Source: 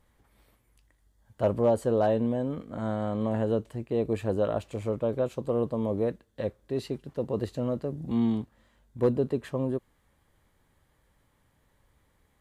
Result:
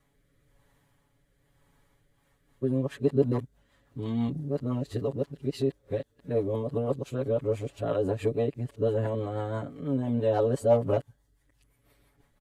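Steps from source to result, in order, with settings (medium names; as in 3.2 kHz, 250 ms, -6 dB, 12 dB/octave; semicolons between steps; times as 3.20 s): reverse the whole clip; rotary cabinet horn 1 Hz, later 6 Hz, at 1.84 s; comb 7.1 ms, depth 85%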